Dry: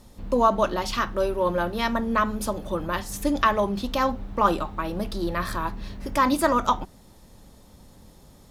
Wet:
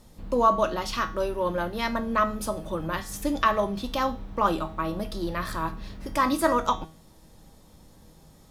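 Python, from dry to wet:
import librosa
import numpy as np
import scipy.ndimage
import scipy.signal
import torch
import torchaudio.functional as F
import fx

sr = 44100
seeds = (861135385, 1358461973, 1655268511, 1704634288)

y = fx.comb_fb(x, sr, f0_hz=160.0, decay_s=0.41, harmonics='all', damping=0.0, mix_pct=70)
y = F.gain(torch.from_numpy(y), 6.0).numpy()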